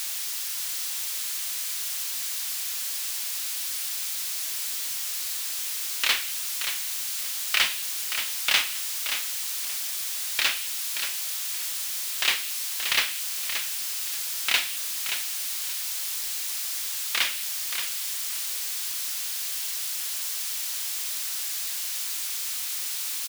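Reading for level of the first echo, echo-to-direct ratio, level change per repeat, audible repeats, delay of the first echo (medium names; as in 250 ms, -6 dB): -8.5 dB, -8.5 dB, -13.5 dB, 2, 577 ms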